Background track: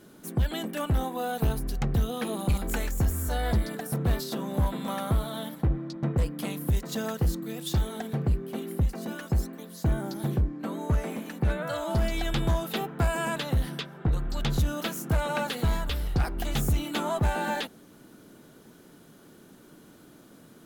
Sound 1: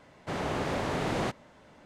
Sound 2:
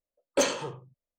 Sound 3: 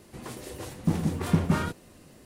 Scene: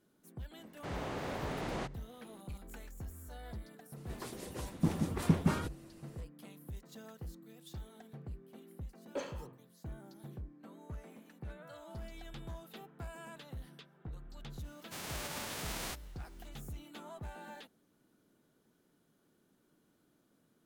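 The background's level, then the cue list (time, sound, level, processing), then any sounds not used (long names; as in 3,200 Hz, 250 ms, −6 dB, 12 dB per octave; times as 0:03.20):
background track −20 dB
0:00.56: mix in 1 −8.5 dB
0:03.96: mix in 3 −3 dB + harmonic and percussive parts rebalanced harmonic −8 dB
0:08.78: mix in 2 −14 dB + low-pass filter 1,700 Hz 6 dB per octave
0:14.64: mix in 1 −11.5 dB + spectral envelope flattened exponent 0.3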